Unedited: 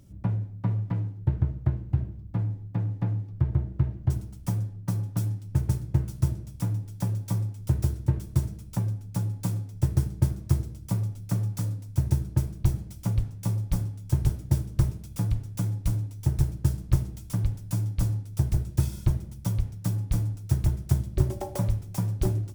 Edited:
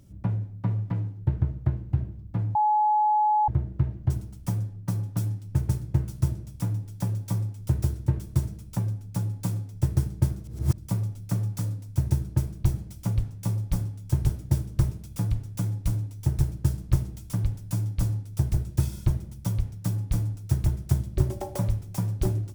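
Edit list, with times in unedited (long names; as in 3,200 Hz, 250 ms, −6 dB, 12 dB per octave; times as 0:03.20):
0:02.55–0:03.48: beep over 848 Hz −18.5 dBFS
0:10.44–0:10.78: reverse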